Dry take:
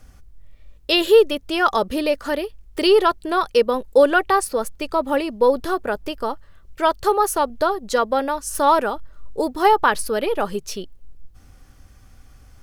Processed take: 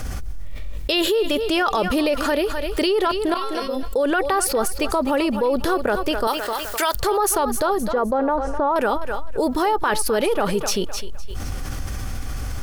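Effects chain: 6.27–6.95 tilt +4.5 dB/oct; limiter -14 dBFS, peak gain reduction 10.5 dB; 3.34–3.83 resonator 270 Hz, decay 0.39 s, harmonics all, mix 100%; 7.83–8.76 LPF 1200 Hz 12 dB/oct; thinning echo 0.256 s, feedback 31%, high-pass 420 Hz, level -14 dB; fast leveller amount 70%

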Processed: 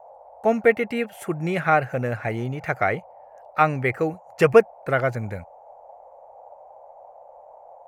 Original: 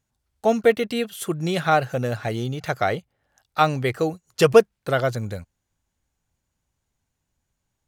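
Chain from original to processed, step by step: band noise 520–880 Hz -46 dBFS; resonant high shelf 2800 Hz -7.5 dB, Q 3; gain -1 dB

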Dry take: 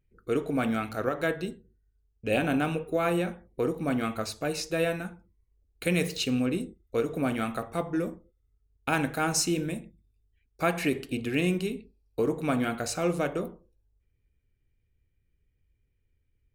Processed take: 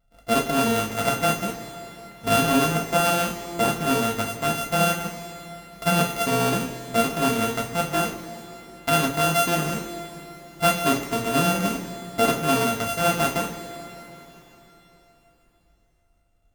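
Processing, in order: sample sorter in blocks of 64 samples; two-slope reverb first 0.25 s, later 3.9 s, from -19 dB, DRR -1 dB; gain +2.5 dB

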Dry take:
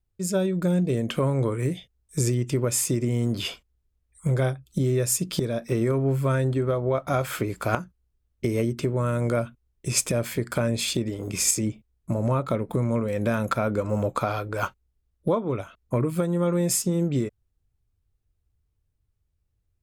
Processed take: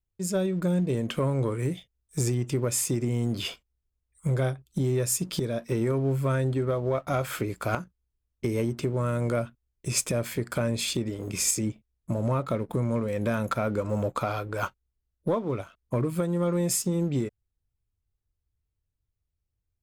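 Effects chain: sample leveller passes 1; gain -6 dB

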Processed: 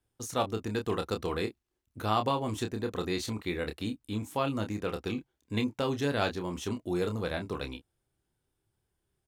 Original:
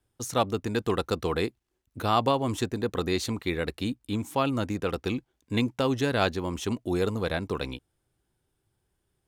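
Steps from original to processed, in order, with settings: doubler 28 ms -7 dB; gain -5 dB

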